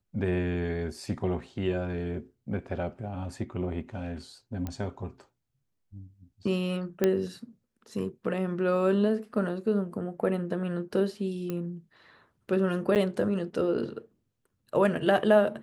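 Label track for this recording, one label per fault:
4.670000	4.670000	pop -21 dBFS
7.040000	7.040000	pop -11 dBFS
11.500000	11.500000	pop -20 dBFS
12.950000	12.960000	gap 8.4 ms

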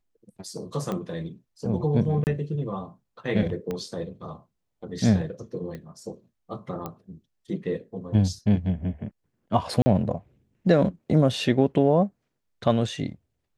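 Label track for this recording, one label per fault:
0.920000	0.920000	pop -18 dBFS
2.240000	2.270000	gap 29 ms
3.710000	3.710000	pop -18 dBFS
5.750000	5.750000	pop -25 dBFS
6.860000	6.860000	pop -19 dBFS
9.820000	9.860000	gap 40 ms

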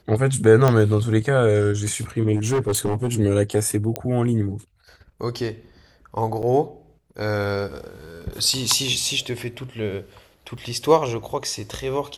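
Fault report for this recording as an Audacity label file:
0.680000	0.680000	pop -6 dBFS
2.350000	3.090000	clipped -17 dBFS
3.960000	3.960000	pop -9 dBFS
6.420000	6.430000	gap 7.8 ms
10.570000	10.580000	gap 6.4 ms

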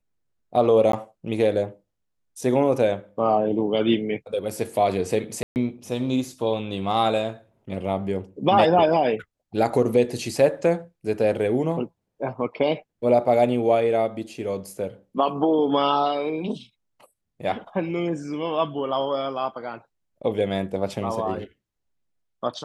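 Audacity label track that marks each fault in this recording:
0.920000	0.930000	gap 13 ms
5.430000	5.560000	gap 0.129 s

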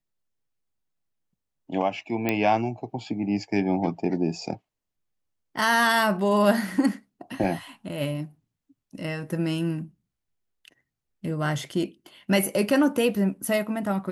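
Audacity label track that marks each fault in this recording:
2.290000	2.290000	pop -10 dBFS
7.440000	7.440000	gap 3.9 ms

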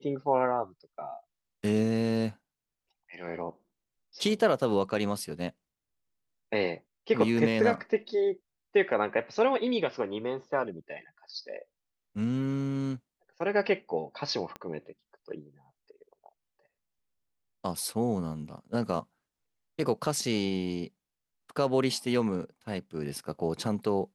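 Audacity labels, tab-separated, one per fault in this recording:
14.560000	14.560000	pop -25 dBFS

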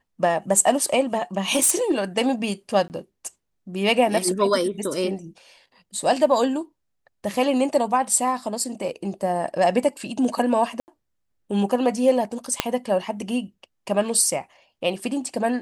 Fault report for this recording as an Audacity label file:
1.550000	1.920000	clipped -13.5 dBFS
2.880000	2.900000	gap 19 ms
10.800000	10.880000	gap 79 ms
12.600000	12.600000	pop -3 dBFS

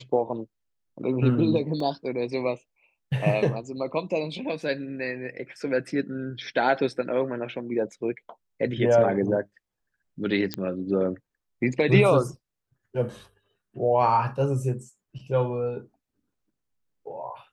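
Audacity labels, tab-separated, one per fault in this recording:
1.800000	1.800000	gap 2.4 ms
10.540000	10.540000	pop -12 dBFS

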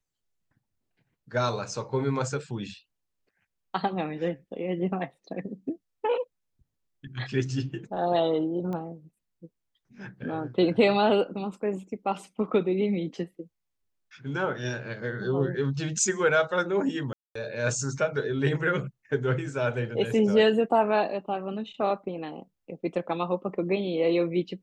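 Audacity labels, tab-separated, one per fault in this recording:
8.730000	8.730000	pop -24 dBFS
17.130000	17.350000	gap 0.224 s

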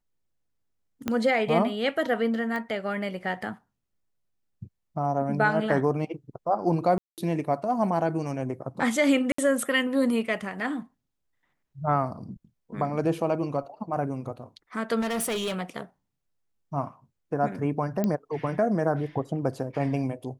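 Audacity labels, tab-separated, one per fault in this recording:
1.080000	1.080000	pop -13 dBFS
2.560000	2.560000	pop -21 dBFS
6.980000	7.180000	gap 0.198 s
9.320000	9.380000	gap 64 ms
15.000000	15.560000	clipped -26 dBFS
18.040000	18.040000	pop -14 dBFS

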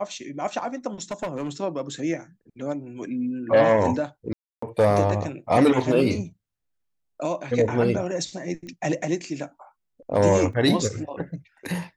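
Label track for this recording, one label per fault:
1.110000	1.490000	clipped -24 dBFS
4.330000	4.620000	gap 0.294 s
8.670000	8.670000	pop -29 dBFS
10.530000	10.530000	gap 2.9 ms

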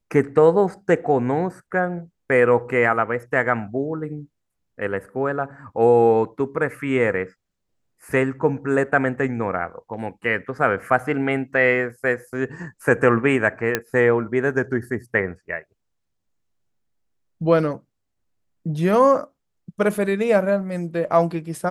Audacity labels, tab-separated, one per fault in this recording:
13.750000	13.750000	pop -5 dBFS

